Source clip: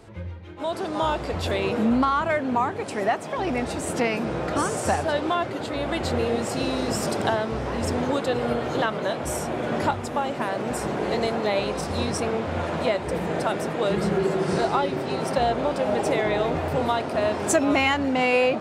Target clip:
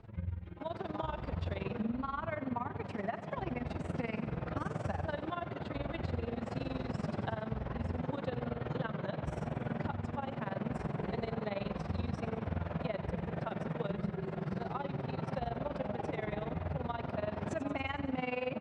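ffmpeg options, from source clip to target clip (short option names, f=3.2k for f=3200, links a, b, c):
-filter_complex "[0:a]lowpass=2.9k,lowshelf=f=230:t=q:w=1.5:g=7,acompressor=threshold=-23dB:ratio=6,tremolo=f=21:d=0.857,asplit=2[a][b];[b]aecho=0:1:91|182|273|364|455|546:0.224|0.132|0.0779|0.046|0.0271|0.016[c];[a][c]amix=inputs=2:normalize=0,volume=-7dB"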